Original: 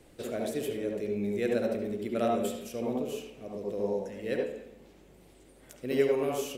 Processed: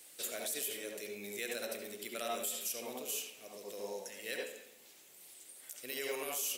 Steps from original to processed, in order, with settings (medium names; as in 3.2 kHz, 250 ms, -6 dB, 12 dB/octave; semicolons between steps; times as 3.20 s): differentiator; peak limiter -39 dBFS, peak gain reduction 10 dB; trim +12 dB